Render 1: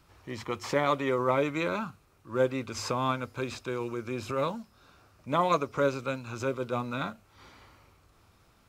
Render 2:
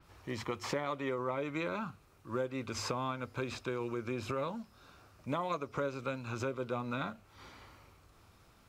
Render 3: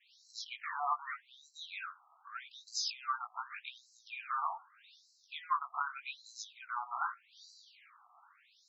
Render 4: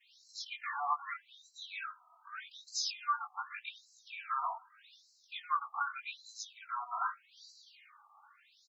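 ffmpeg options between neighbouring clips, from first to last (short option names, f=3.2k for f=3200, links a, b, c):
-af "acompressor=threshold=-32dB:ratio=6,adynamicequalizer=threshold=0.00126:dfrequency=4600:dqfactor=0.7:tfrequency=4600:tqfactor=0.7:attack=5:release=100:ratio=0.375:range=2.5:mode=cutabove:tftype=highshelf"
-af "flanger=delay=17.5:depth=3.3:speed=0.28,afftfilt=real='re*between(b*sr/1024,920*pow(5600/920,0.5+0.5*sin(2*PI*0.83*pts/sr))/1.41,920*pow(5600/920,0.5+0.5*sin(2*PI*0.83*pts/sr))*1.41)':imag='im*between(b*sr/1024,920*pow(5600/920,0.5+0.5*sin(2*PI*0.83*pts/sr))/1.41,920*pow(5600/920,0.5+0.5*sin(2*PI*0.83*pts/sr))*1.41)':win_size=1024:overlap=0.75,volume=9.5dB"
-filter_complex "[0:a]asplit=2[a][b];[b]adelay=2.8,afreqshift=-0.39[c];[a][c]amix=inputs=2:normalize=1,volume=4dB"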